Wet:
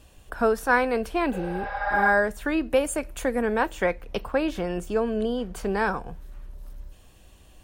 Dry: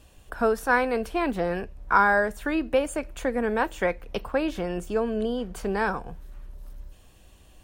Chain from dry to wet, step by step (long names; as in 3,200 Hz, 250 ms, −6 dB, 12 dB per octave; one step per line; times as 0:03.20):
0:01.35–0:02.05: healed spectral selection 460–6,300 Hz both
0:02.70–0:03.42: parametric band 12,000 Hz +8.5 dB 1.1 octaves
level +1 dB